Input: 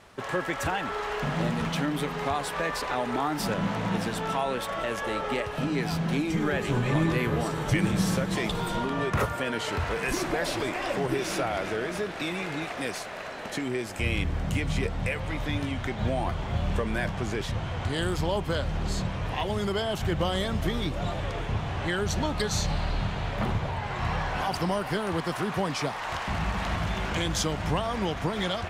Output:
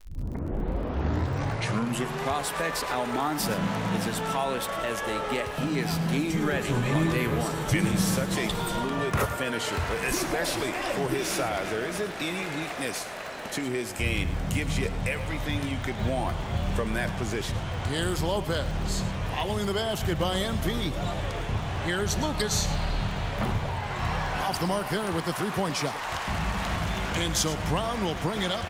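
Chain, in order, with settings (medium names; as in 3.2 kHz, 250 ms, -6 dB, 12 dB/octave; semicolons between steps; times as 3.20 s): tape start-up on the opening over 2.34 s; treble shelf 7.3 kHz +9.5 dB; crackle 50 per s -38 dBFS; delay 109 ms -14.5 dB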